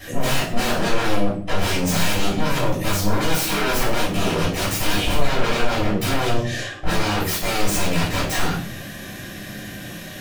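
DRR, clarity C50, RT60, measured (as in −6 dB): −10.0 dB, 5.0 dB, 0.55 s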